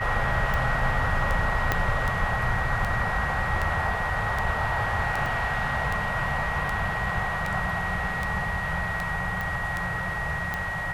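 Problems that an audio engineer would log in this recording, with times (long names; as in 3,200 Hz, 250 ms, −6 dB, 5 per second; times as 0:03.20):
scratch tick 78 rpm
whistle 1,900 Hz −30 dBFS
0:01.72: click −8 dBFS
0:05.26: drop-out 2.1 ms
0:07.09: drop-out 3.1 ms
0:09.41: click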